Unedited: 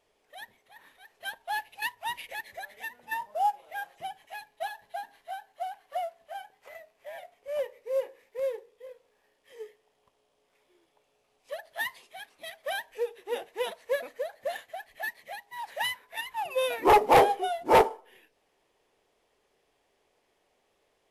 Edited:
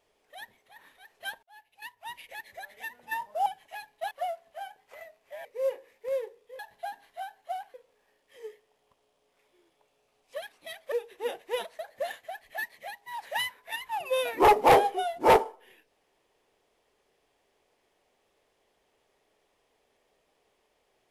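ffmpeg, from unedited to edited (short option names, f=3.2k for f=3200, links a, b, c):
-filter_complex "[0:a]asplit=10[a][b][c][d][e][f][g][h][i][j];[a]atrim=end=1.43,asetpts=PTS-STARTPTS,afade=t=out:st=1.426:d=0.004:c=hsin[k];[b]atrim=start=1.43:end=3.462,asetpts=PTS-STARTPTS,afade=t=in:d=1.53[l];[c]atrim=start=4.048:end=4.702[m];[d]atrim=start=5.848:end=7.192[n];[e]atrim=start=7.758:end=8.902[o];[f]atrim=start=4.698:end=5.852[p];[g]atrim=start=8.898:end=11.582[q];[h]atrim=start=12.188:end=12.692[r];[i]atrim=start=12.988:end=13.862[s];[j]atrim=start=14.238[t];[k][l]concat=n=2:v=0:a=1[u];[u][m]acrossfade=d=0.004:c1=hsin:c2=hsin[v];[v][n]acrossfade=d=0.004:c1=hsin:c2=hsin[w];[w][o]acrossfade=d=0.004:c1=hsin:c2=hsin[x];[x][p]acrossfade=d=0.004:c1=hsin:c2=hsin[y];[y][q]acrossfade=d=0.004:c1=hsin:c2=hsin[z];[z][r]acrossfade=d=0.004:c1=hsin:c2=hsin[aa];[aa][s]acrossfade=d=0.004:c1=hsin:c2=hsin[ab];[ab][t]acrossfade=d=0.004:c1=hsin:c2=hsin"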